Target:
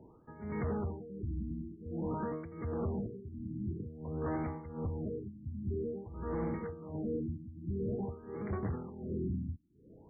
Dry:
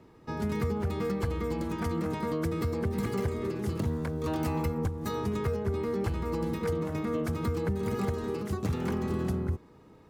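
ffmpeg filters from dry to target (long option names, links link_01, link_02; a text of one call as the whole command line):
ffmpeg -i in.wav -af "tremolo=f=1.4:d=0.87,asoftclip=type=tanh:threshold=-30dB,afftfilt=real='re*lt(b*sr/1024,310*pow(2400/310,0.5+0.5*sin(2*PI*0.5*pts/sr)))':imag='im*lt(b*sr/1024,310*pow(2400/310,0.5+0.5*sin(2*PI*0.5*pts/sr)))':win_size=1024:overlap=0.75" out.wav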